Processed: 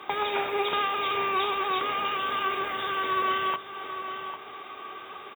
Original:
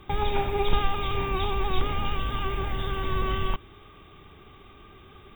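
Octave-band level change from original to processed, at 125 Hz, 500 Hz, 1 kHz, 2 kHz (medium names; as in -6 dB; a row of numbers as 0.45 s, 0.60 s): -21.0 dB, -0.5 dB, +4.5 dB, +5.5 dB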